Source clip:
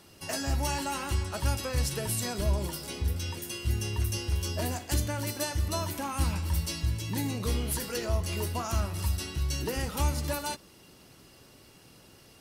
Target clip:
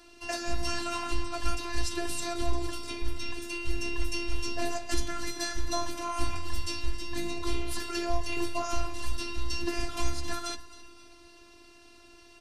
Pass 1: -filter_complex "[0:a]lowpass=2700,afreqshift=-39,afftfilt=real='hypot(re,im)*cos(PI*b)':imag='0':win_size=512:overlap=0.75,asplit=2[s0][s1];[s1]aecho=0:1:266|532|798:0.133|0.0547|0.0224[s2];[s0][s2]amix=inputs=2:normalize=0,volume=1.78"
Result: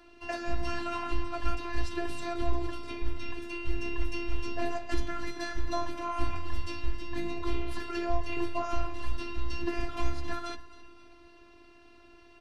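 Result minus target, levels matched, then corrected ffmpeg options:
8 kHz band -12.0 dB
-filter_complex "[0:a]lowpass=6700,afreqshift=-39,afftfilt=real='hypot(re,im)*cos(PI*b)':imag='0':win_size=512:overlap=0.75,asplit=2[s0][s1];[s1]aecho=0:1:266|532|798:0.133|0.0547|0.0224[s2];[s0][s2]amix=inputs=2:normalize=0,volume=1.78"

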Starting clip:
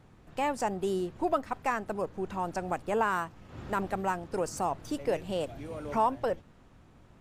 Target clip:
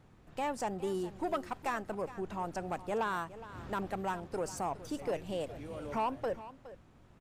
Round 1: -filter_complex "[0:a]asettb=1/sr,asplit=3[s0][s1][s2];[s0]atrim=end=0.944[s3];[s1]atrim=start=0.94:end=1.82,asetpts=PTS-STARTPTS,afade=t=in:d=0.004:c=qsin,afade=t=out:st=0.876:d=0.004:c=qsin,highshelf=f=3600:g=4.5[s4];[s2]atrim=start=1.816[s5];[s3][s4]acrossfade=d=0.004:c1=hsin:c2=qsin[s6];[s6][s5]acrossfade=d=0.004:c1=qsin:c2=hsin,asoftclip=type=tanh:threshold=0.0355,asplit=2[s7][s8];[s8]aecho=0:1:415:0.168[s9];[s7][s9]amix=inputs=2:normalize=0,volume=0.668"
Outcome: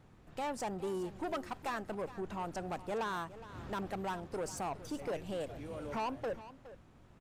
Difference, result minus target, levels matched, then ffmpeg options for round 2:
saturation: distortion +7 dB
-filter_complex "[0:a]asettb=1/sr,asplit=3[s0][s1][s2];[s0]atrim=end=0.944[s3];[s1]atrim=start=0.94:end=1.82,asetpts=PTS-STARTPTS,afade=t=in:d=0.004:c=qsin,afade=t=out:st=0.876:d=0.004:c=qsin,highshelf=f=3600:g=4.5[s4];[s2]atrim=start=1.816[s5];[s3][s4]acrossfade=d=0.004:c1=hsin:c2=qsin[s6];[s6][s5]acrossfade=d=0.004:c1=qsin:c2=hsin,asoftclip=type=tanh:threshold=0.075,asplit=2[s7][s8];[s8]aecho=0:1:415:0.168[s9];[s7][s9]amix=inputs=2:normalize=0,volume=0.668"

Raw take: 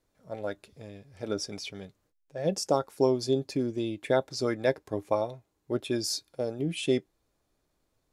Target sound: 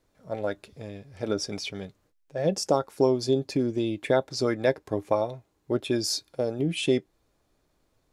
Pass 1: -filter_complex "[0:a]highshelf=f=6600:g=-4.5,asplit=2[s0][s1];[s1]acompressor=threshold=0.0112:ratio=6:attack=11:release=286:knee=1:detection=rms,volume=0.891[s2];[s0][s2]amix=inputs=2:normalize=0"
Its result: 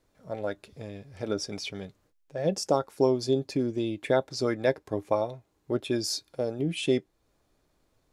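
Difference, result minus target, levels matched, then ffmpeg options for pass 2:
compression: peak gain reduction +8.5 dB
-filter_complex "[0:a]highshelf=f=6600:g=-4.5,asplit=2[s0][s1];[s1]acompressor=threshold=0.0355:ratio=6:attack=11:release=286:knee=1:detection=rms,volume=0.891[s2];[s0][s2]amix=inputs=2:normalize=0"

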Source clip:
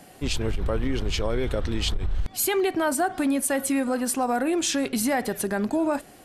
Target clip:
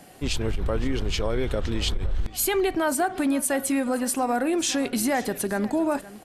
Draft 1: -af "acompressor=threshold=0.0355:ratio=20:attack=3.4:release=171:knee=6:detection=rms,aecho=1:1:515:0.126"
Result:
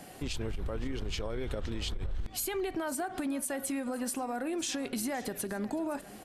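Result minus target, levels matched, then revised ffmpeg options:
compression: peak gain reduction +12 dB
-af "aecho=1:1:515:0.126"

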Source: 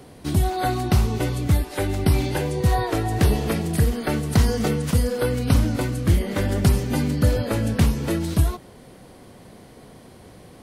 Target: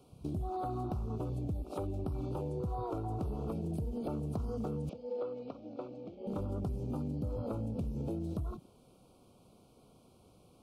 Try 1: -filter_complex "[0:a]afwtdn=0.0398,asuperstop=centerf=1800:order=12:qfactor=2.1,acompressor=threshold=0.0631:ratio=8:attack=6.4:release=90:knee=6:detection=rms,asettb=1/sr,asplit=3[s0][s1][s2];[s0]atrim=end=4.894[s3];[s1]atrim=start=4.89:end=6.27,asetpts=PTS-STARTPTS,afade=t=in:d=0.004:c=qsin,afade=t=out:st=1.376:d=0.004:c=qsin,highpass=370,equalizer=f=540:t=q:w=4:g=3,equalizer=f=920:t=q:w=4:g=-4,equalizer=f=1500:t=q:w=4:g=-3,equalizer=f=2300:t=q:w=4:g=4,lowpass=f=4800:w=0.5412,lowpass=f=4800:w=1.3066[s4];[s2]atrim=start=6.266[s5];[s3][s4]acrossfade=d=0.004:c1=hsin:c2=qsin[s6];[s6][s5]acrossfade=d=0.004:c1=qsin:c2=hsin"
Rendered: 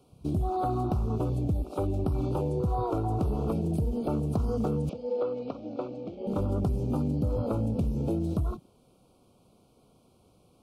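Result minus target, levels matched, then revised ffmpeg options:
compression: peak gain reduction -8.5 dB
-filter_complex "[0:a]afwtdn=0.0398,asuperstop=centerf=1800:order=12:qfactor=2.1,acompressor=threshold=0.02:ratio=8:attack=6.4:release=90:knee=6:detection=rms,asettb=1/sr,asplit=3[s0][s1][s2];[s0]atrim=end=4.894[s3];[s1]atrim=start=4.89:end=6.27,asetpts=PTS-STARTPTS,afade=t=in:d=0.004:c=qsin,afade=t=out:st=1.376:d=0.004:c=qsin,highpass=370,equalizer=f=540:t=q:w=4:g=3,equalizer=f=920:t=q:w=4:g=-4,equalizer=f=1500:t=q:w=4:g=-3,equalizer=f=2300:t=q:w=4:g=4,lowpass=f=4800:w=0.5412,lowpass=f=4800:w=1.3066[s4];[s2]atrim=start=6.266[s5];[s3][s4]acrossfade=d=0.004:c1=hsin:c2=qsin[s6];[s6][s5]acrossfade=d=0.004:c1=qsin:c2=hsin"

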